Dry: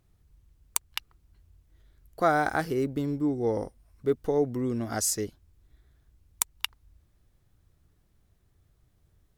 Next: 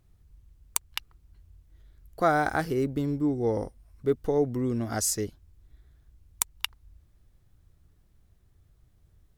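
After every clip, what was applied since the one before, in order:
low-shelf EQ 110 Hz +6 dB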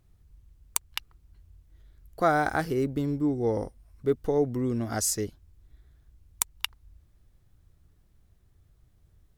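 no processing that can be heard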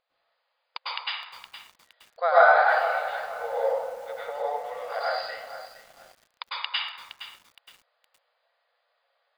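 linear-phase brick-wall band-pass 470–5,000 Hz
dense smooth reverb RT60 0.91 s, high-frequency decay 0.6×, pre-delay 90 ms, DRR −9 dB
feedback echo at a low word length 466 ms, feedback 35%, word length 7 bits, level −11.5 dB
level −1.5 dB

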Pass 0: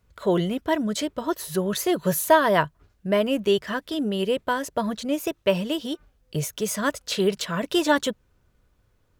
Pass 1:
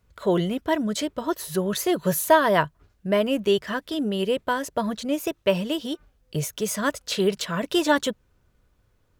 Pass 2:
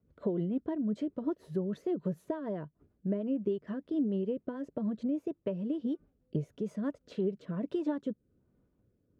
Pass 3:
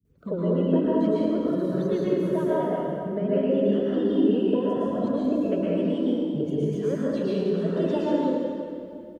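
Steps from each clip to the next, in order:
no processing that can be heard
downward compressor 4 to 1, threshold −29 dBFS, peak gain reduction 15 dB; rotating-speaker cabinet horn 6.7 Hz, later 1.2 Hz, at 0:06.48; resonant band-pass 250 Hz, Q 1.2; level +3.5 dB
spectral magnitudes quantised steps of 30 dB; multiband delay without the direct sound lows, highs 50 ms, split 250 Hz; convolution reverb RT60 2.4 s, pre-delay 103 ms, DRR −8 dB; level +4.5 dB

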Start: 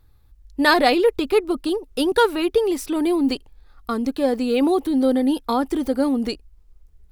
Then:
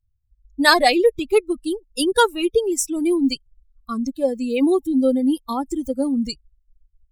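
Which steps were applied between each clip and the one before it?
spectral dynamics exaggerated over time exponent 2
parametric band 7,500 Hz +13.5 dB 0.97 octaves
level +3.5 dB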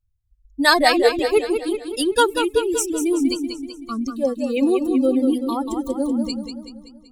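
feedback echo with a swinging delay time 190 ms, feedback 52%, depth 81 cents, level −7 dB
level −1 dB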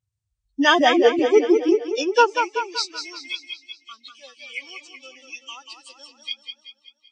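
hearing-aid frequency compression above 1,800 Hz 1.5 to 1
high-pass filter sweep 140 Hz → 2,500 Hz, 0:00.78–0:03.60
level −1 dB

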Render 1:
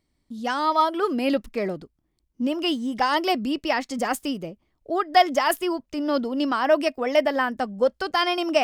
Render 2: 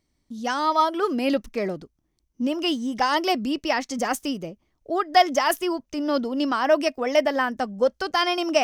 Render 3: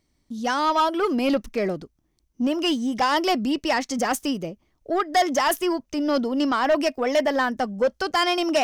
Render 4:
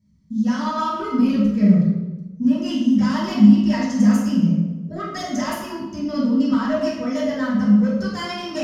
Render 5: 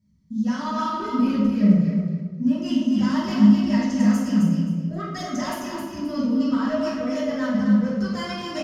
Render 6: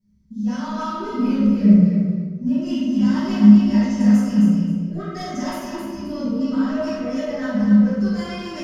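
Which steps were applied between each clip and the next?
parametric band 6,000 Hz +9 dB 0.24 octaves
soft clipping −17 dBFS, distortion −12 dB; level +3 dB
convolution reverb RT60 1.1 s, pre-delay 3 ms, DRR −11.5 dB; level −17 dB
repeating echo 263 ms, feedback 23%, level −5.5 dB; level −3.5 dB
rectangular room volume 42 cubic metres, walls mixed, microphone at 1.2 metres; level −7 dB

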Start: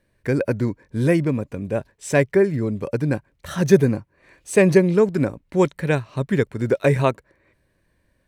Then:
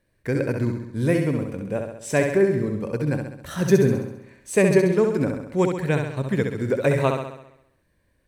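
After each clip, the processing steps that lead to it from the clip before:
high-shelf EQ 9,600 Hz +3.5 dB
on a send: flutter between parallel walls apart 11.4 metres, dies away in 0.78 s
on the sum: level −3.5 dB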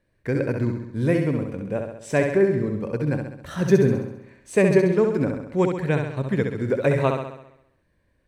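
low-pass filter 3,900 Hz 6 dB per octave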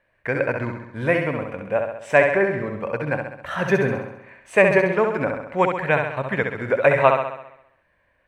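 flat-topped bell 1,300 Hz +14.5 dB 2.8 octaves
level −5 dB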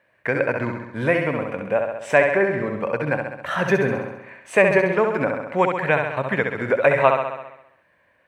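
high-pass filter 120 Hz
in parallel at +1 dB: downward compressor, threshold −25 dBFS, peak gain reduction 15 dB
on the sum: level −2.5 dB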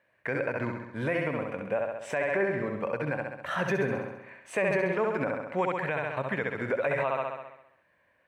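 brickwall limiter −11.5 dBFS, peak gain reduction 10 dB
level −6.5 dB

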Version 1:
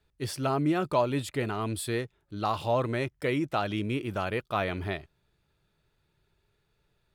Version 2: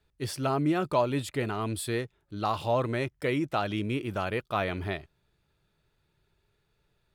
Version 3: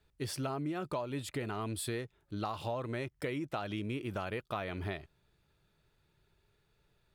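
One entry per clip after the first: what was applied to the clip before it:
no processing that can be heard
downward compressor 6 to 1, threshold −34 dBFS, peak gain reduction 13.5 dB

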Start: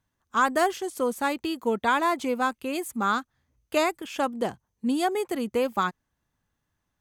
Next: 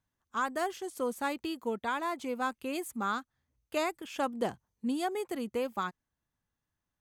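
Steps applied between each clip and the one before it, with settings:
speech leveller 0.5 s
level −7.5 dB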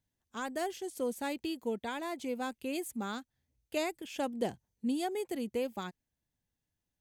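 parametric band 1,200 Hz −12.5 dB 0.78 octaves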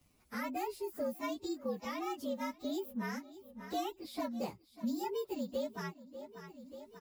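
partials spread apart or drawn together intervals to 116%
repeating echo 589 ms, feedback 38%, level −22 dB
multiband upward and downward compressor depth 70%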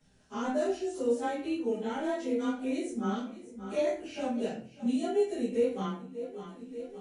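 partials spread apart or drawn together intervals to 83%
convolution reverb RT60 0.45 s, pre-delay 5 ms, DRR −7.5 dB
level −2 dB

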